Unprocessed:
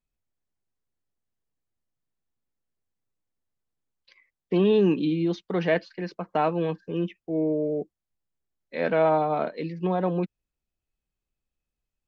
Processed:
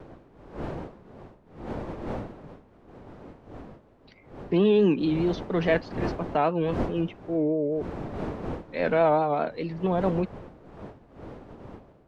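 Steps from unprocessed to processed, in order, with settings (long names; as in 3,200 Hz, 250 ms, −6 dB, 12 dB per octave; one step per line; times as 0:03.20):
wind on the microphone 480 Hz −38 dBFS
pitch vibrato 4.8 Hz 76 cents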